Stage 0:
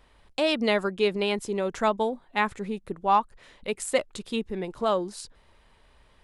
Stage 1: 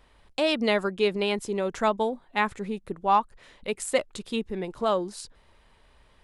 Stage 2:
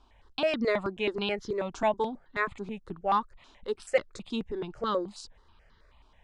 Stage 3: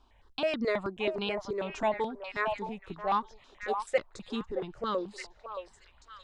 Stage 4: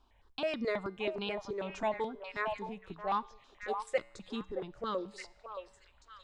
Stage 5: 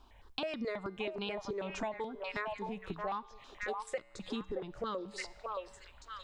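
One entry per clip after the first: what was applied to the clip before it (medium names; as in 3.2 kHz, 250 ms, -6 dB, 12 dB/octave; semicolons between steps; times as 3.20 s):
no audible change
low-pass 6.7 kHz 24 dB/octave; stepped phaser 9.3 Hz 520–2500 Hz
repeats whose band climbs or falls 621 ms, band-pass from 790 Hz, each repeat 1.4 oct, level -4 dB; trim -2.5 dB
feedback comb 63 Hz, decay 0.85 s, harmonics odd, mix 40%
compression 6:1, threshold -43 dBFS, peak gain reduction 17 dB; trim +7.5 dB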